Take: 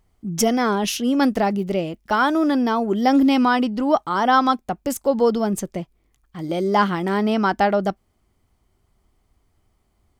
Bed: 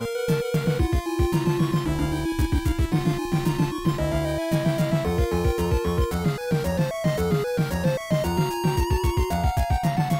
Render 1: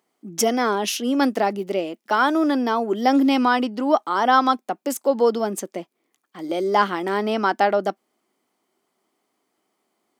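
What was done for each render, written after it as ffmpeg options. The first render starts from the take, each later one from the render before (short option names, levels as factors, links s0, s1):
-af "highpass=f=250:w=0.5412,highpass=f=250:w=1.3066"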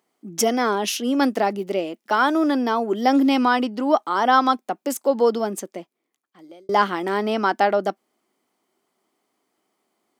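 -filter_complex "[0:a]asplit=2[s0][s1];[s0]atrim=end=6.69,asetpts=PTS-STARTPTS,afade=t=out:st=5.36:d=1.33[s2];[s1]atrim=start=6.69,asetpts=PTS-STARTPTS,afade=t=in:d=0.004:c=hsin[s3];[s2][s3]concat=n=2:v=0:a=1"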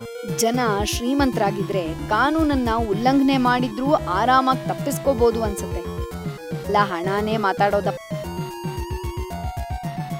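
-filter_complex "[1:a]volume=0.531[s0];[0:a][s0]amix=inputs=2:normalize=0"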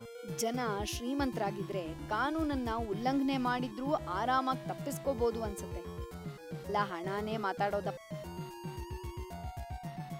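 -af "volume=0.2"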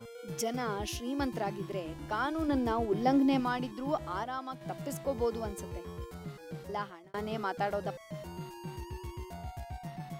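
-filter_complex "[0:a]asettb=1/sr,asplit=3[s0][s1][s2];[s0]atrim=end=2.484[s3];[s1]atrim=start=2.48:end=3.4,asetpts=PTS-STARTPTS,afade=t=in:d=0.004:c=qsin,afade=t=out:st=0.916:d=0.004:c=qsin,equalizer=f=400:w=0.54:g=6.5[s4];[s2]atrim=start=3.396[s5];[s3][s4]acrossfade=d=0.004:c1=hsin:c2=qsin[s6];[s6][s5]acrossfade=d=0.004:c1=qsin:c2=hsin,asplit=4[s7][s8][s9][s10];[s7]atrim=end=4.24,asetpts=PTS-STARTPTS,afade=t=out:st=3.96:d=0.28:c=log:silence=0.398107[s11];[s8]atrim=start=4.24:end=4.61,asetpts=PTS-STARTPTS,volume=0.398[s12];[s9]atrim=start=4.61:end=7.14,asetpts=PTS-STARTPTS,afade=t=in:d=0.28:c=log:silence=0.398107,afade=t=out:st=1.93:d=0.6[s13];[s10]atrim=start=7.14,asetpts=PTS-STARTPTS,afade=t=in:d=0.004:c=hsin[s14];[s11][s12][s13][s14]concat=n=4:v=0:a=1"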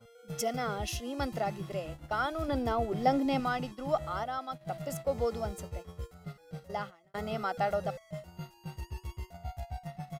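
-af "agate=range=0.316:threshold=0.00891:ratio=16:detection=peak,aecho=1:1:1.5:0.57"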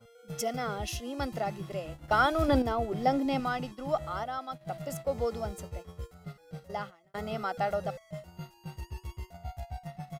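-filter_complex "[0:a]asplit=3[s0][s1][s2];[s0]atrim=end=2.082[s3];[s1]atrim=start=2.078:end=2.622,asetpts=PTS-STARTPTS,volume=2.24[s4];[s2]atrim=start=2.618[s5];[s3][s4]acrossfade=d=0.004:c1=hsin:c2=hsin[s6];[s6][s5]acrossfade=d=0.004:c1=hsin:c2=hsin"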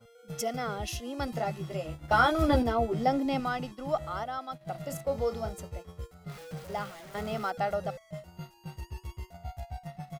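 -filter_complex "[0:a]asettb=1/sr,asplit=3[s0][s1][s2];[s0]atrim=end=1.264[s3];[s1]atrim=start=1.26:end=3.04,asetpts=PTS-STARTPTS,afade=t=in:d=0.004:c=qsin,afade=t=out:st=1.776:d=0.004:c=qsin,asplit=2[s4][s5];[s5]adelay=13,volume=0.631[s6];[s4][s6]amix=inputs=2:normalize=0,atrim=end_sample=78498[s7];[s2]atrim=start=3.036[s8];[s3][s7]acrossfade=d=0.004:c1=hsin:c2=qsin[s9];[s9][s8]acrossfade=d=0.004:c1=qsin:c2=hsin,asettb=1/sr,asplit=3[s10][s11][s12];[s10]atrim=end=4.714[s13];[s11]atrim=start=4.71:end=5.54,asetpts=PTS-STARTPTS,afade=t=in:d=0.004:c=qsin,afade=t=out:st=0.826:d=0.004:c=qsin,asplit=2[s14][s15];[s15]adelay=36,volume=0.335[s16];[s14][s16]amix=inputs=2:normalize=0,atrim=end_sample=36603[s17];[s12]atrim=start=5.536[s18];[s13][s17]acrossfade=d=0.004:c1=hsin:c2=qsin[s19];[s19][s18]acrossfade=d=0.004:c1=qsin:c2=hsin,asettb=1/sr,asplit=3[s20][s21][s22];[s20]atrim=end=6.294[s23];[s21]atrim=start=6.29:end=7.51,asetpts=PTS-STARTPTS,afade=t=in:d=0.004:c=qsin,afade=t=out:st=1.216:d=0.004:c=qsin,aeval=exprs='val(0)+0.5*0.00794*sgn(val(0))':c=same[s24];[s22]atrim=start=7.506[s25];[s23][s24]acrossfade=d=0.004:c1=hsin:c2=qsin[s26];[s26][s25]acrossfade=d=0.004:c1=qsin:c2=hsin"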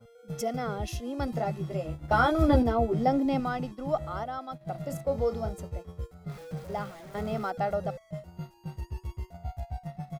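-af "tiltshelf=f=880:g=4,bandreject=f=2900:w=21"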